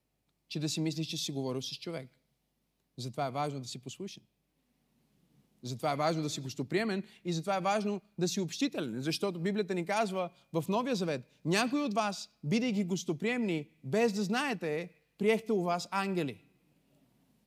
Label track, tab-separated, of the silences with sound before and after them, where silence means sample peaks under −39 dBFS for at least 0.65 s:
2.030000	2.980000	silence
4.140000	5.640000	silence